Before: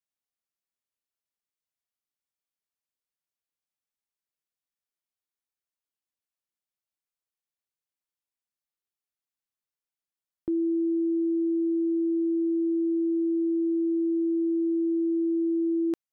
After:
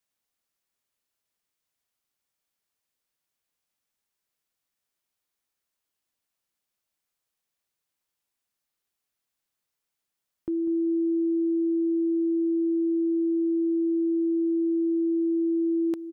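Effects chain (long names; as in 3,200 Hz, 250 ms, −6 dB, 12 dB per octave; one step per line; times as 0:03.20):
brickwall limiter −32 dBFS, peak gain reduction 9.5 dB
on a send: repeating echo 196 ms, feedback 36%, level −13 dB
on the sum: level +8.5 dB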